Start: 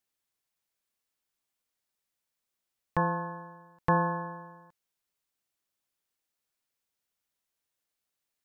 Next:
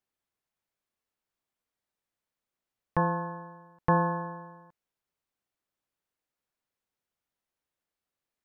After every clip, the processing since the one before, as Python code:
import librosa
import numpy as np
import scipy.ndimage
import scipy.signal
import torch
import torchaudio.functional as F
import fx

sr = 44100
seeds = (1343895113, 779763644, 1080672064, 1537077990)

y = fx.high_shelf(x, sr, hz=2700.0, db=-11.0)
y = y * 10.0 ** (2.0 / 20.0)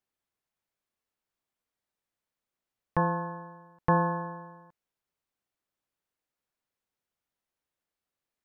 y = x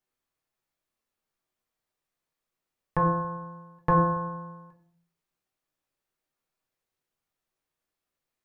y = fx.room_shoebox(x, sr, seeds[0], volume_m3=54.0, walls='mixed', distance_m=0.54)